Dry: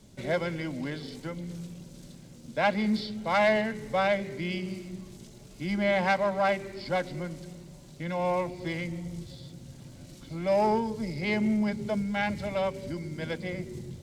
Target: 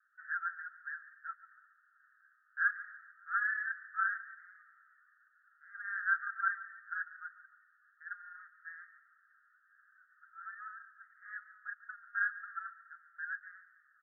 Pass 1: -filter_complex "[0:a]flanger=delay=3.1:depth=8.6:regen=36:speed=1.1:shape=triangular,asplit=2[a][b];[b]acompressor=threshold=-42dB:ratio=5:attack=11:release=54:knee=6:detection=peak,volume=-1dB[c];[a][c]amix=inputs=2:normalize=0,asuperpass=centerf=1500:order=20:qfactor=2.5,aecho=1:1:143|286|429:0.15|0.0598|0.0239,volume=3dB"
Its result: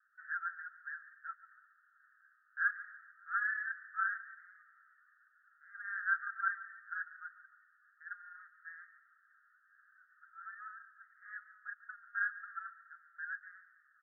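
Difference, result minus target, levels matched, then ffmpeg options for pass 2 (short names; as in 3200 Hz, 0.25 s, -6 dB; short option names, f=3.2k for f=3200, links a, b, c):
compressor: peak gain reduction +7 dB
-filter_complex "[0:a]flanger=delay=3.1:depth=8.6:regen=36:speed=1.1:shape=triangular,asplit=2[a][b];[b]acompressor=threshold=-33dB:ratio=5:attack=11:release=54:knee=6:detection=peak,volume=-1dB[c];[a][c]amix=inputs=2:normalize=0,asuperpass=centerf=1500:order=20:qfactor=2.5,aecho=1:1:143|286|429:0.15|0.0598|0.0239,volume=3dB"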